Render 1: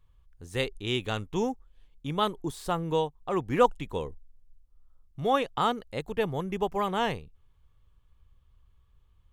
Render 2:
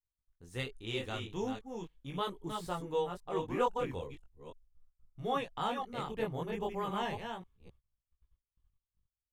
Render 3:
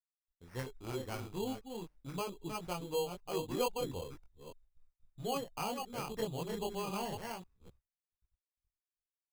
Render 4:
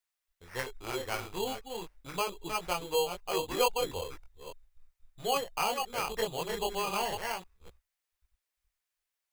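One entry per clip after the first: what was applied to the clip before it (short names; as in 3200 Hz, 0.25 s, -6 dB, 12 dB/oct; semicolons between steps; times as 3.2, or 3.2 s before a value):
reverse delay 0.265 s, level -5.5 dB; gate -53 dBFS, range -29 dB; chorus voices 2, 0.39 Hz, delay 20 ms, depth 3.5 ms; gain -5.5 dB
expander -59 dBFS; treble ducked by the level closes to 910 Hz, closed at -31 dBFS; sample-and-hold 12×; gain -1.5 dB
graphic EQ 125/250/2000 Hz -11/-10/+4 dB; gain +8 dB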